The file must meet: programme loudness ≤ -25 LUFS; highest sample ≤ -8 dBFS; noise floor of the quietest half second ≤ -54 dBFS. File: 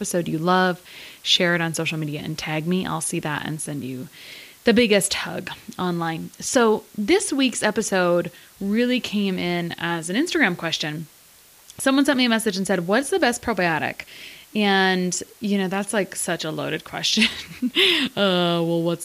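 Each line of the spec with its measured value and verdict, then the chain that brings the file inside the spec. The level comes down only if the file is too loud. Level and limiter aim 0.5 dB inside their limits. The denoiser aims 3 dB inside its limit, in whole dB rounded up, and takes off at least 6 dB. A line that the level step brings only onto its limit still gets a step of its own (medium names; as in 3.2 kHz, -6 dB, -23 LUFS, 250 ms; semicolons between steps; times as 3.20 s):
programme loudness -21.5 LUFS: fail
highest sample -5.5 dBFS: fail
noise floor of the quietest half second -51 dBFS: fail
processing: trim -4 dB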